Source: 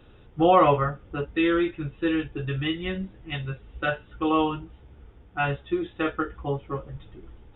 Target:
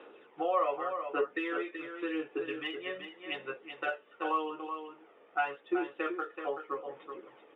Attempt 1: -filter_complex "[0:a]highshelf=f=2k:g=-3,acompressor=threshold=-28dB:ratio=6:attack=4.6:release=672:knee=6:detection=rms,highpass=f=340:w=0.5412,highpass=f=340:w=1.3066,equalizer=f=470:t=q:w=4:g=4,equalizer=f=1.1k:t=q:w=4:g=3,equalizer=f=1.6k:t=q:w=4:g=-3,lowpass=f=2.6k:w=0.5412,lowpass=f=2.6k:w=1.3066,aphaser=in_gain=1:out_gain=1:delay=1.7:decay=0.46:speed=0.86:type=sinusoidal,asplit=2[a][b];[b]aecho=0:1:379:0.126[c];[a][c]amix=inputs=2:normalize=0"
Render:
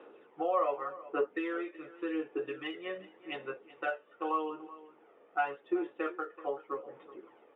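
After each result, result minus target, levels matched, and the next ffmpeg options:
echo-to-direct -10 dB; 4000 Hz band -4.5 dB
-filter_complex "[0:a]highshelf=f=2k:g=-3,acompressor=threshold=-28dB:ratio=6:attack=4.6:release=672:knee=6:detection=rms,highpass=f=340:w=0.5412,highpass=f=340:w=1.3066,equalizer=f=470:t=q:w=4:g=4,equalizer=f=1.1k:t=q:w=4:g=3,equalizer=f=1.6k:t=q:w=4:g=-3,lowpass=f=2.6k:w=0.5412,lowpass=f=2.6k:w=1.3066,aphaser=in_gain=1:out_gain=1:delay=1.7:decay=0.46:speed=0.86:type=sinusoidal,asplit=2[a][b];[b]aecho=0:1:379:0.398[c];[a][c]amix=inputs=2:normalize=0"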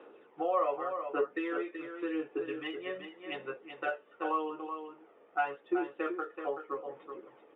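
4000 Hz band -4.5 dB
-filter_complex "[0:a]highshelf=f=2k:g=7,acompressor=threshold=-28dB:ratio=6:attack=4.6:release=672:knee=6:detection=rms,highpass=f=340:w=0.5412,highpass=f=340:w=1.3066,equalizer=f=470:t=q:w=4:g=4,equalizer=f=1.1k:t=q:w=4:g=3,equalizer=f=1.6k:t=q:w=4:g=-3,lowpass=f=2.6k:w=0.5412,lowpass=f=2.6k:w=1.3066,aphaser=in_gain=1:out_gain=1:delay=1.7:decay=0.46:speed=0.86:type=sinusoidal,asplit=2[a][b];[b]aecho=0:1:379:0.398[c];[a][c]amix=inputs=2:normalize=0"

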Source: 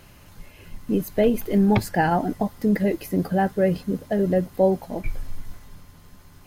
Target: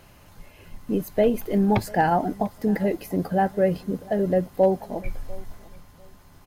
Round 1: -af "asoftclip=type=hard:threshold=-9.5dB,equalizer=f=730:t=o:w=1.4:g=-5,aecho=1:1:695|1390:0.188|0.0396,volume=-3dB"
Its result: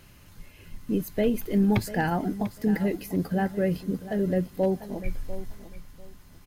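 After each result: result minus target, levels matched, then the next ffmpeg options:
1000 Hz band -5.5 dB; echo-to-direct +8 dB
-af "asoftclip=type=hard:threshold=-9.5dB,equalizer=f=730:t=o:w=1.4:g=4.5,aecho=1:1:695|1390:0.188|0.0396,volume=-3dB"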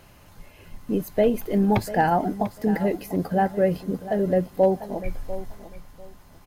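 echo-to-direct +8 dB
-af "asoftclip=type=hard:threshold=-9.5dB,equalizer=f=730:t=o:w=1.4:g=4.5,aecho=1:1:695|1390:0.075|0.0157,volume=-3dB"

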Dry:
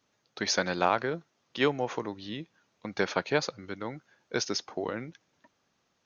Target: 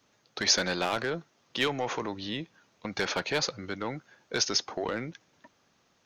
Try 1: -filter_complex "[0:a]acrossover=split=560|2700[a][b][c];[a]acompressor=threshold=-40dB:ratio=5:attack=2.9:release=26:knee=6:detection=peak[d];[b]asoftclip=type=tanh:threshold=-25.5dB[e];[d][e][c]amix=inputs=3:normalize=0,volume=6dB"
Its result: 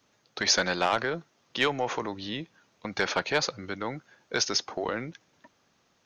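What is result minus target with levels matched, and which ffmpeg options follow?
soft clip: distortion -6 dB
-filter_complex "[0:a]acrossover=split=560|2700[a][b][c];[a]acompressor=threshold=-40dB:ratio=5:attack=2.9:release=26:knee=6:detection=peak[d];[b]asoftclip=type=tanh:threshold=-34.5dB[e];[d][e][c]amix=inputs=3:normalize=0,volume=6dB"

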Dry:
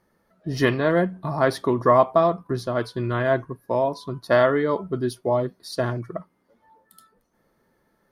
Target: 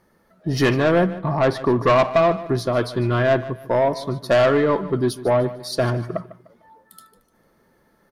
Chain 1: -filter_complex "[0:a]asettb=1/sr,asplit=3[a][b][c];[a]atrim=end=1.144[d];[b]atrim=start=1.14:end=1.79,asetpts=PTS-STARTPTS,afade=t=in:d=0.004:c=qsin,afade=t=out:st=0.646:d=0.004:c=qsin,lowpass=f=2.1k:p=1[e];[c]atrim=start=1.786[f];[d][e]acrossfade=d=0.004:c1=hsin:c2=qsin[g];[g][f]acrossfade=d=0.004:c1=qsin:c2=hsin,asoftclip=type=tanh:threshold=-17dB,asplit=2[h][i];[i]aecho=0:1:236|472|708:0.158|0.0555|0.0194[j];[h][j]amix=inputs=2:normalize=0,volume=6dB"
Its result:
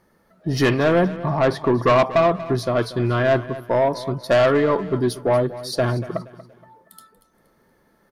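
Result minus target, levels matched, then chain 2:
echo 86 ms late
-filter_complex "[0:a]asettb=1/sr,asplit=3[a][b][c];[a]atrim=end=1.144[d];[b]atrim=start=1.14:end=1.79,asetpts=PTS-STARTPTS,afade=t=in:d=0.004:c=qsin,afade=t=out:st=0.646:d=0.004:c=qsin,lowpass=f=2.1k:p=1[e];[c]atrim=start=1.786[f];[d][e]acrossfade=d=0.004:c1=hsin:c2=qsin[g];[g][f]acrossfade=d=0.004:c1=qsin:c2=hsin,asoftclip=type=tanh:threshold=-17dB,asplit=2[h][i];[i]aecho=0:1:150|300|450:0.158|0.0555|0.0194[j];[h][j]amix=inputs=2:normalize=0,volume=6dB"

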